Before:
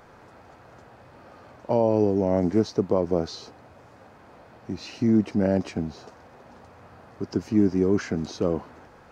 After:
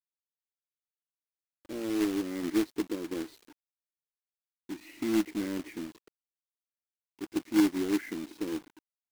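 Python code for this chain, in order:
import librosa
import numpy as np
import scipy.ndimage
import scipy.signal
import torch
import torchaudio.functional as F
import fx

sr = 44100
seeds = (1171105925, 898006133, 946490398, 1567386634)

y = fx.double_bandpass(x, sr, hz=800.0, octaves=2.7)
y = fx.noise_reduce_blind(y, sr, reduce_db=16)
y = fx.quant_companded(y, sr, bits=4)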